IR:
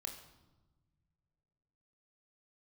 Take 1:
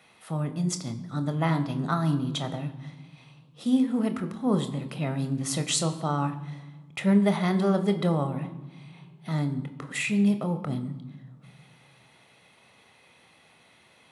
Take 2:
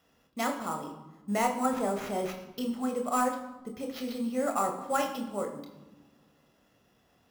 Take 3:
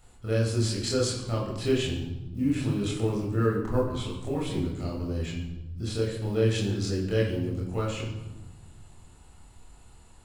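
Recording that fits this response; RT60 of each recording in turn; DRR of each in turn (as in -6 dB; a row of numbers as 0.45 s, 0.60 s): 2; no single decay rate, 1.2 s, 1.1 s; 8.0 dB, 3.0 dB, -4.0 dB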